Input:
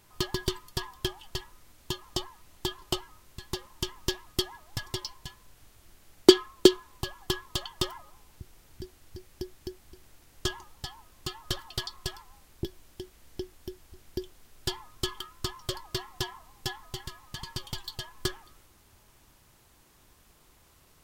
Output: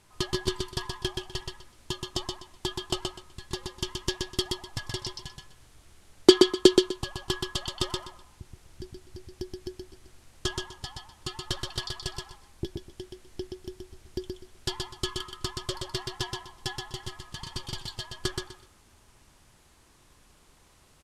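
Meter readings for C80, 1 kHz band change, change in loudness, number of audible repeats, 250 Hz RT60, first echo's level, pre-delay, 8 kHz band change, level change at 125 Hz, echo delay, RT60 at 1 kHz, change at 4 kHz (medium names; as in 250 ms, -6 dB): no reverb, +1.5 dB, +1.5 dB, 3, no reverb, -4.0 dB, no reverb, +1.5 dB, +1.5 dB, 125 ms, no reverb, +1.5 dB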